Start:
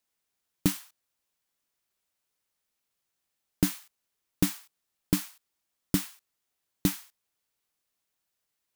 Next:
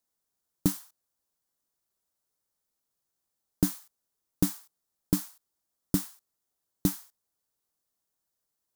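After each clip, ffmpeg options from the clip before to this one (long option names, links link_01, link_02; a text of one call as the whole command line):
ffmpeg -i in.wav -af "equalizer=frequency=2500:width_type=o:width=1.2:gain=-11.5" out.wav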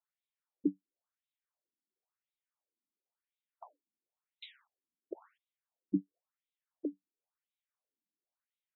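ffmpeg -i in.wav -af "afftfilt=real='re*between(b*sr/1024,240*pow(2900/240,0.5+0.5*sin(2*PI*0.96*pts/sr))/1.41,240*pow(2900/240,0.5+0.5*sin(2*PI*0.96*pts/sr))*1.41)':imag='im*between(b*sr/1024,240*pow(2900/240,0.5+0.5*sin(2*PI*0.96*pts/sr))/1.41,240*pow(2900/240,0.5+0.5*sin(2*PI*0.96*pts/sr))*1.41)':win_size=1024:overlap=0.75,volume=-1.5dB" out.wav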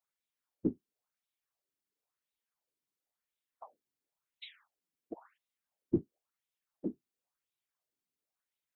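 ffmpeg -i in.wav -af "afftfilt=real='hypot(re,im)*cos(2*PI*random(0))':imag='hypot(re,im)*sin(2*PI*random(1))':win_size=512:overlap=0.75,volume=8dB" out.wav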